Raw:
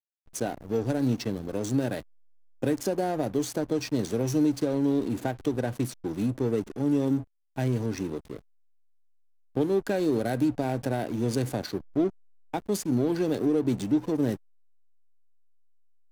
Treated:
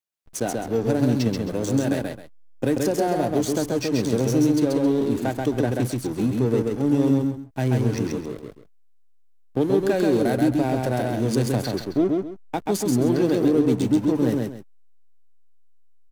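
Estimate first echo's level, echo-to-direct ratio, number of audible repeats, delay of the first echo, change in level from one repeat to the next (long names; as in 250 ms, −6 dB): −3.0 dB, −2.5 dB, 2, 133 ms, −11.5 dB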